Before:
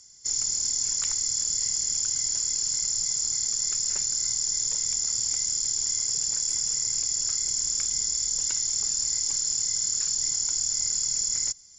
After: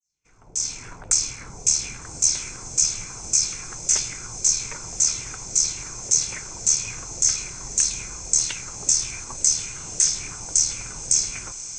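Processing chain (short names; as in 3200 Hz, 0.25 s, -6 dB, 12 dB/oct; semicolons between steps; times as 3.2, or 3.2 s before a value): opening faded in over 0.97 s; AGC gain up to 14 dB; formant shift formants +3 st; LFO low-pass saw down 1.8 Hz 520–7600 Hz; on a send: diffused feedback echo 1.227 s, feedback 58%, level -12.5 dB; on the sum: gain -8 dB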